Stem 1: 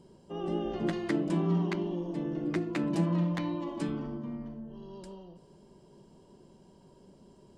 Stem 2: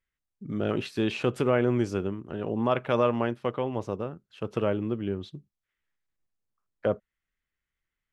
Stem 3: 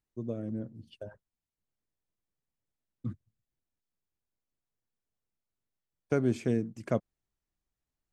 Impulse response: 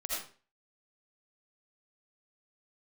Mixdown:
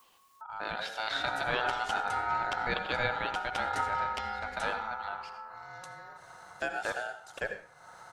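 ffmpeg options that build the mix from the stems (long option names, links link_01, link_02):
-filter_complex "[0:a]adelay=800,volume=1dB,asplit=2[link_01][link_02];[link_02]volume=-15.5dB[link_03];[1:a]adynamicequalizer=threshold=0.00398:dfrequency=2300:dqfactor=1.4:tfrequency=2300:tqfactor=1.4:attack=5:release=100:ratio=0.375:range=4:mode=boostabove:tftype=bell,volume=-5.5dB,asplit=2[link_04][link_05];[link_05]volume=-12dB[link_06];[2:a]highpass=frequency=330:width=0.5412,highpass=frequency=330:width=1.3066,adelay=500,volume=-1dB,asplit=2[link_07][link_08];[link_08]volume=-7.5dB[link_09];[3:a]atrim=start_sample=2205[link_10];[link_03][link_06][link_09]amix=inputs=3:normalize=0[link_11];[link_11][link_10]afir=irnorm=-1:irlink=0[link_12];[link_01][link_04][link_07][link_12]amix=inputs=4:normalize=0,tiltshelf=frequency=1300:gain=-3.5,acompressor=mode=upward:threshold=-37dB:ratio=2.5,aeval=exprs='val(0)*sin(2*PI*1100*n/s)':channel_layout=same"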